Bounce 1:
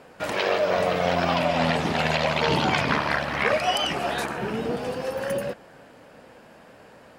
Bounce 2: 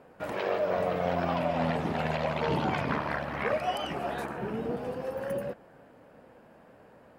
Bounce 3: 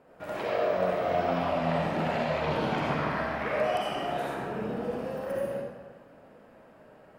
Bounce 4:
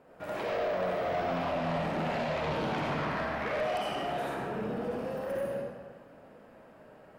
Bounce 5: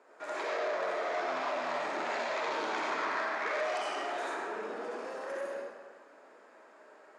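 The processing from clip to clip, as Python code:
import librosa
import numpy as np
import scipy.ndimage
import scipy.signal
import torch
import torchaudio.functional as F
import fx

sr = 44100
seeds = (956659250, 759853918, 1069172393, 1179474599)

y1 = fx.peak_eq(x, sr, hz=5500.0, db=-12.0, octaves=2.7)
y1 = y1 * 10.0 ** (-4.5 / 20.0)
y2 = fx.rev_freeverb(y1, sr, rt60_s=1.2, hf_ratio=0.9, predelay_ms=25, drr_db=-5.0)
y2 = y2 * 10.0 ** (-5.0 / 20.0)
y3 = 10.0 ** (-26.5 / 20.0) * np.tanh(y2 / 10.0 ** (-26.5 / 20.0))
y4 = fx.cabinet(y3, sr, low_hz=380.0, low_slope=24, high_hz=8600.0, hz=(510.0, 730.0, 2900.0, 6800.0), db=(-9, -6, -7, 6))
y4 = y4 * 10.0 ** (3.0 / 20.0)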